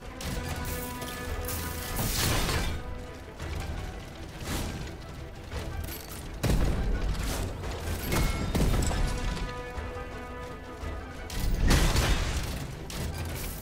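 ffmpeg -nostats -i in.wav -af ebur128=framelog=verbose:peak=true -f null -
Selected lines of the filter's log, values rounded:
Integrated loudness:
  I:         -32.2 LUFS
  Threshold: -42.3 LUFS
Loudness range:
  LRA:         5.7 LU
  Threshold: -52.4 LUFS
  LRA low:   -36.5 LUFS
  LRA high:  -30.7 LUFS
True peak:
  Peak:      -10.6 dBFS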